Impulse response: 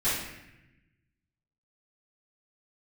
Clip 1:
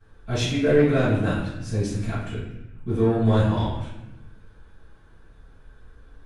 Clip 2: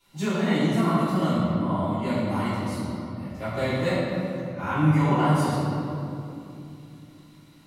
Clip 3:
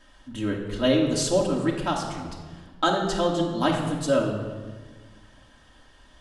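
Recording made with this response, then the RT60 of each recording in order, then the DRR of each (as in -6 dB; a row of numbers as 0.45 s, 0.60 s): 1; 0.90 s, 2.8 s, 1.5 s; -16.5 dB, -17.0 dB, -2.5 dB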